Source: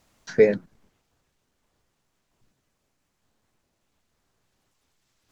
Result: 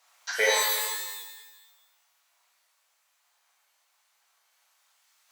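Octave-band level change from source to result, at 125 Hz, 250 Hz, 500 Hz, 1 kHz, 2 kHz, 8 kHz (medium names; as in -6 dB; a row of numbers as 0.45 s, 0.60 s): under -35 dB, under -25 dB, -10.0 dB, +15.0 dB, +8.5 dB, no reading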